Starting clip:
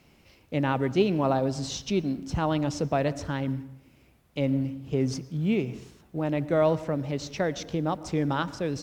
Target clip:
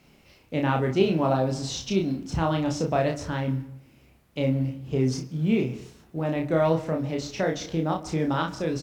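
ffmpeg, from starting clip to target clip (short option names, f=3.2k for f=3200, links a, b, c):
-filter_complex "[0:a]bandreject=f=50:t=h:w=6,bandreject=f=100:t=h:w=6,asplit=2[a][b];[b]aecho=0:1:31|59:0.708|0.251[c];[a][c]amix=inputs=2:normalize=0"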